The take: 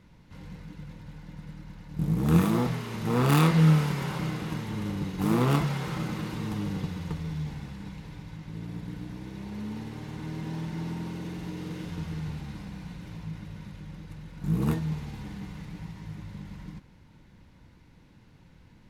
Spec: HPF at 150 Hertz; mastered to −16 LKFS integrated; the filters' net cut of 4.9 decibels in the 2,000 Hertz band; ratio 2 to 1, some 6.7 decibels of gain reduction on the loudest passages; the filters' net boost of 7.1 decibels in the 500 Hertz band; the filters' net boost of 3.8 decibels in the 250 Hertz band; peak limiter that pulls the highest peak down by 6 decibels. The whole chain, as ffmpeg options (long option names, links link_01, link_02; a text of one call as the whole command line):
ffmpeg -i in.wav -af "highpass=150,equalizer=frequency=250:width_type=o:gain=6,equalizer=frequency=500:width_type=o:gain=7,equalizer=frequency=2000:width_type=o:gain=-7,acompressor=threshold=-27dB:ratio=2,volume=17.5dB,alimiter=limit=-3dB:level=0:latency=1" out.wav